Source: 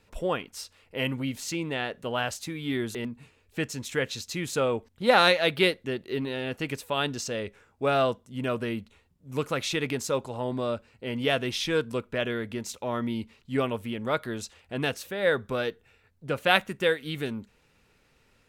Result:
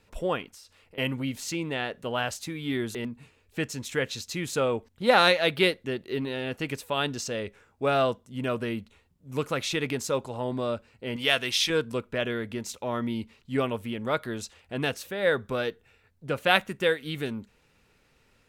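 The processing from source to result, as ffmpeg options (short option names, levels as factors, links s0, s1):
-filter_complex "[0:a]asettb=1/sr,asplit=3[s0][s1][s2];[s0]atrim=end=0.504[s3];[s1]atrim=start=0.5:end=0.98,asetpts=PTS-STARTPTS,afade=t=in:d=0.004:c=qsin,afade=t=out:st=0.476:d=0.004:c=qsin,acompressor=threshold=0.00501:ratio=10:attack=3.2:release=140:knee=1:detection=peak[s4];[s2]atrim=start=0.976[s5];[s3][s4]acrossfade=d=0.004:c1=hsin:c2=qsin[s6];[s6][s5]acrossfade=d=0.004:c1=qsin:c2=hsin,asettb=1/sr,asplit=3[s7][s8][s9];[s7]atrim=end=11.164[s10];[s8]atrim=start=11.16:end=11.7,asetpts=PTS-STARTPTS,afade=t=in:d=0.004:c=qsin,afade=t=out:st=0.536:d=0.004:c=qsin,tiltshelf=f=930:g=-7[s11];[s9]atrim=start=11.696[s12];[s10][s11]acrossfade=d=0.004:c1=hsin:c2=qsin[s13];[s13][s12]acrossfade=d=0.004:c1=qsin:c2=hsin"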